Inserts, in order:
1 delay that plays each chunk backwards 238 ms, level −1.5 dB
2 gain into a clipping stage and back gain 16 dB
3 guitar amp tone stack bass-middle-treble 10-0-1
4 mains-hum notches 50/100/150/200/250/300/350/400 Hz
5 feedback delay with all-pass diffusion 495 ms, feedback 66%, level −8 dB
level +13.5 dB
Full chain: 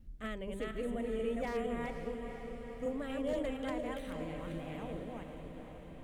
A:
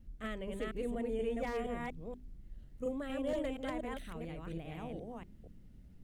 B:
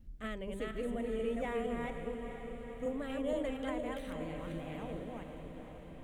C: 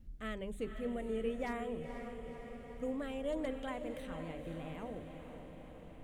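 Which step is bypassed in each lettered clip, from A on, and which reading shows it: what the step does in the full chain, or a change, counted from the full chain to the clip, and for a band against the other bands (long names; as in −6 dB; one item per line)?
5, echo-to-direct ratio −5.5 dB to none audible
2, distortion level −26 dB
1, change in momentary loudness spread +2 LU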